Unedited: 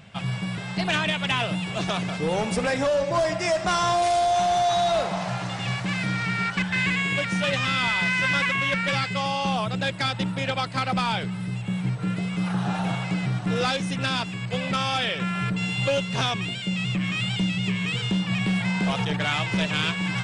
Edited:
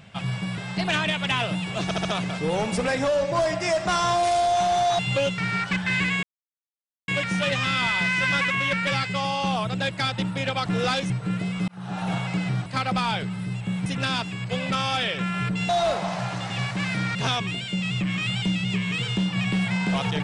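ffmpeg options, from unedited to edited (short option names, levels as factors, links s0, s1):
-filter_complex "[0:a]asplit=14[s0][s1][s2][s3][s4][s5][s6][s7][s8][s9][s10][s11][s12][s13];[s0]atrim=end=1.912[s14];[s1]atrim=start=1.838:end=1.912[s15];[s2]atrim=start=1.838:end=1.912[s16];[s3]atrim=start=1.838:end=4.782[s17];[s4]atrim=start=15.698:end=16.092[s18];[s5]atrim=start=6.238:end=7.09,asetpts=PTS-STARTPTS,afade=t=out:st=0.848:d=0.004:c=hsin,apad=pad_dur=0.85[s19];[s6]atrim=start=7.09:end=10.672,asetpts=PTS-STARTPTS,afade=t=in:d=0.004:c=hsin[s20];[s7]atrim=start=13.428:end=13.872[s21];[s8]atrim=start=11.868:end=12.45,asetpts=PTS-STARTPTS,afade=t=out:st=0.578:d=0.004:c=hsin[s22];[s9]atrim=start=12.45:end=13.432,asetpts=PTS-STARTPTS,afade=t=in:d=0.44[s23];[s10]atrim=start=10.668:end=11.872[s24];[s11]atrim=start=13.868:end=15.702[s25];[s12]atrim=start=4.778:end=6.242[s26];[s13]atrim=start=16.088[s27];[s14][s15]acrossfade=d=0.004:c1=hsin:c2=hsin[s28];[s28][s16]acrossfade=d=0.004:c1=hsin:c2=hsin[s29];[s29][s17]acrossfade=d=0.004:c1=hsin:c2=hsin[s30];[s30][s18]acrossfade=d=0.004:c1=hsin:c2=hsin[s31];[s19][s20]concat=n=2:v=0:a=1[s32];[s31][s32]acrossfade=d=0.004:c1=hsin:c2=hsin[s33];[s33][s21]acrossfade=d=0.004:c1=hsin:c2=hsin[s34];[s22][s23]concat=n=2:v=0:a=1[s35];[s34][s35]acrossfade=d=0.004:c1=hsin:c2=hsin[s36];[s36][s24]acrossfade=d=0.004:c1=hsin:c2=hsin[s37];[s37][s25]acrossfade=d=0.004:c1=hsin:c2=hsin[s38];[s38][s26]acrossfade=d=0.004:c1=hsin:c2=hsin[s39];[s39][s27]acrossfade=d=0.004:c1=hsin:c2=hsin"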